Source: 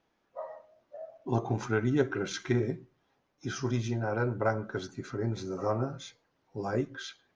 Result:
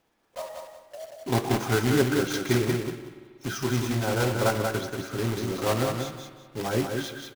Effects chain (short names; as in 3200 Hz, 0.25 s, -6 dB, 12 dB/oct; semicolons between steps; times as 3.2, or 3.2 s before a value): block floating point 3-bit; feedback echo 0.185 s, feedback 24%, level -5 dB; on a send at -13 dB: reverb RT60 2.1 s, pre-delay 47 ms; on the sum: gain +3.5 dB